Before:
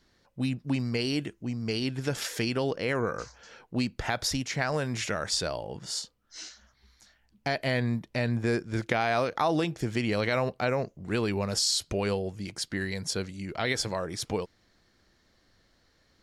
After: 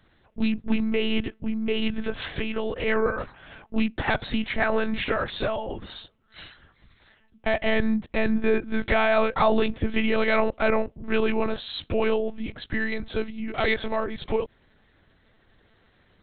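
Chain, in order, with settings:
0:02.02–0:02.87: downward compressor 4 to 1, threshold −30 dBFS, peak gain reduction 6 dB
one-pitch LPC vocoder at 8 kHz 220 Hz
level +6 dB

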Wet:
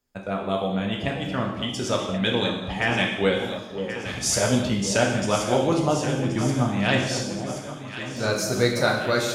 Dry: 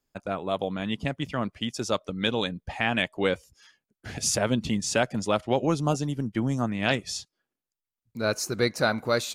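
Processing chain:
delay that swaps between a low-pass and a high-pass 539 ms, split 910 Hz, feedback 79%, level −8.5 dB
reverb whose tail is shaped and stops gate 310 ms falling, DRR −0.5 dB

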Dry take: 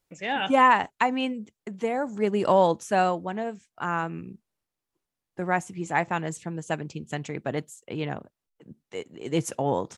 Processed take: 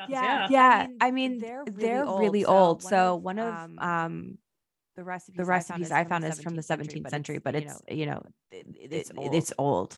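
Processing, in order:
backwards echo 412 ms −10.5 dB

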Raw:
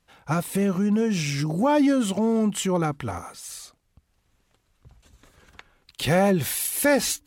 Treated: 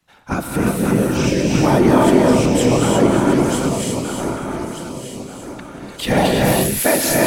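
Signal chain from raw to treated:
feedback delay that plays each chunk backwards 615 ms, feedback 57%, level −2 dB
frequency shifter +34 Hz
random phases in short frames
reverb whose tail is shaped and stops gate 380 ms rising, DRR −1 dB
level +2.5 dB

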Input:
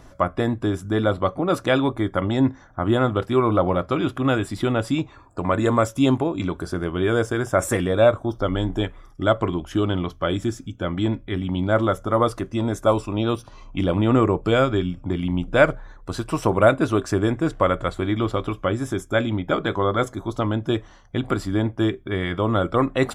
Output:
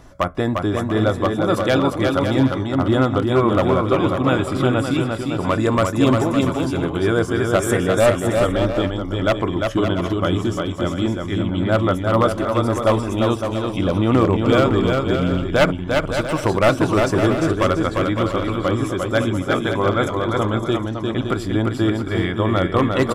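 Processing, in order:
wavefolder on the positive side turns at −10.5 dBFS
on a send: bouncing-ball delay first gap 350 ms, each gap 0.6×, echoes 5
on the sum: level +1.5 dB

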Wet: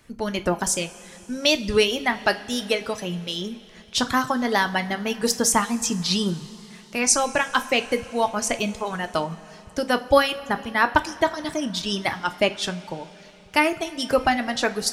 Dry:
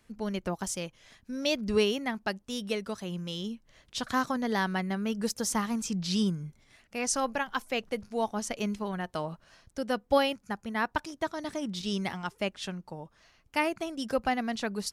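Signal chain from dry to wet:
harmonic and percussive parts rebalanced percussive +5 dB
reverb reduction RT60 1 s
coupled-rooms reverb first 0.28 s, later 3.6 s, from −18 dB, DRR 8 dB
level +6.5 dB

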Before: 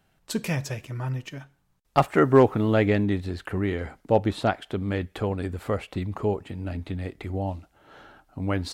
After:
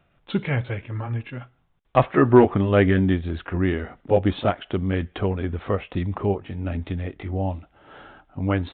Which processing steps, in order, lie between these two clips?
pitch glide at a constant tempo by −2 semitones ending unshifted
downsampling to 8,000 Hz
level +4.5 dB

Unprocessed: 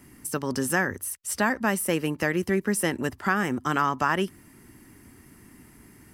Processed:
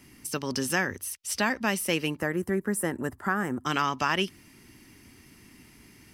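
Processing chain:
flat-topped bell 3,700 Hz +8 dB, from 0:02.17 −9 dB, from 0:03.65 +9.5 dB
level −3 dB

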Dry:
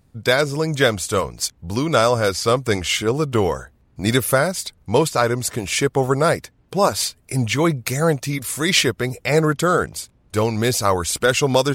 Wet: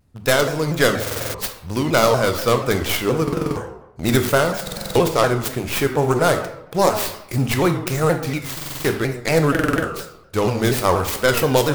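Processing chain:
stylus tracing distortion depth 0.38 ms
in parallel at −6 dB: centre clipping without the shift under −23.5 dBFS
on the sum: convolution reverb RT60 0.85 s, pre-delay 20 ms, DRR 6 dB
buffer that repeats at 0:01.02/0:03.23/0:04.63/0:08.52/0:09.50, samples 2,048, times 6
pitch modulation by a square or saw wave saw down 4.2 Hz, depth 160 cents
level −4 dB

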